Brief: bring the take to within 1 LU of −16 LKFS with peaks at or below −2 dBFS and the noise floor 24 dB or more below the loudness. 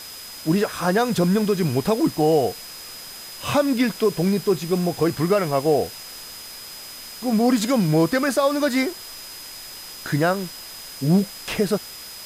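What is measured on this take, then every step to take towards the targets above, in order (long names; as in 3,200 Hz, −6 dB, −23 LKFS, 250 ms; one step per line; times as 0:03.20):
interfering tone 5,000 Hz; level of the tone −39 dBFS; background noise floor −38 dBFS; target noise floor −46 dBFS; integrated loudness −21.5 LKFS; sample peak −8.5 dBFS; target loudness −16.0 LKFS
→ notch filter 5,000 Hz, Q 30
noise reduction from a noise print 8 dB
level +5.5 dB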